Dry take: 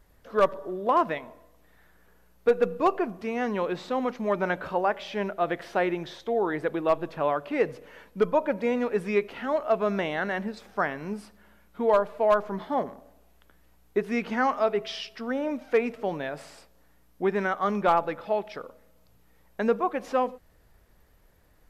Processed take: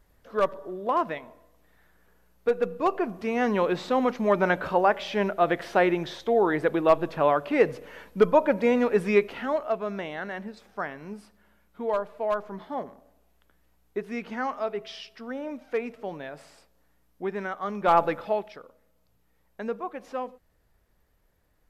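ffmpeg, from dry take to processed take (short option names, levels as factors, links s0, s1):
-af "volume=5.31,afade=t=in:st=2.8:d=0.67:silence=0.473151,afade=t=out:st=9.16:d=0.65:silence=0.334965,afade=t=in:st=17.8:d=0.21:silence=0.298538,afade=t=out:st=18.01:d=0.58:silence=0.237137"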